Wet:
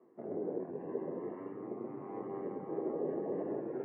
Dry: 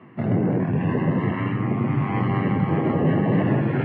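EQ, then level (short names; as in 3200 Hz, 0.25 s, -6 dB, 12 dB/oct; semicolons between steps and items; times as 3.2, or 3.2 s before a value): ladder band-pass 480 Hz, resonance 50%; air absorption 230 m; -3.0 dB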